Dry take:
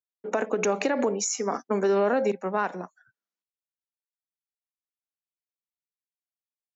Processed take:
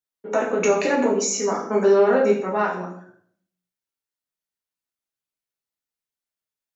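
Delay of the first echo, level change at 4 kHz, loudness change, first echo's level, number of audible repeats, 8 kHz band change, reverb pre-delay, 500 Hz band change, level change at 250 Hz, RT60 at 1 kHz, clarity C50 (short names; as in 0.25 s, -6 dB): none, +4.0 dB, +6.0 dB, none, none, n/a, 4 ms, +6.5 dB, +5.5 dB, 0.55 s, 6.0 dB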